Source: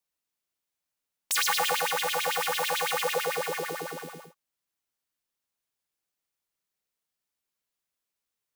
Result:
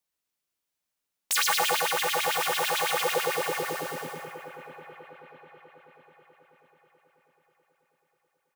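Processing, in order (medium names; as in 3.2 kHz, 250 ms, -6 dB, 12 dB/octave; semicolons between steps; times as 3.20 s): harmony voices -5 st -13 dB; two-band feedback delay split 2.5 kHz, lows 648 ms, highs 188 ms, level -11.5 dB; trim +1 dB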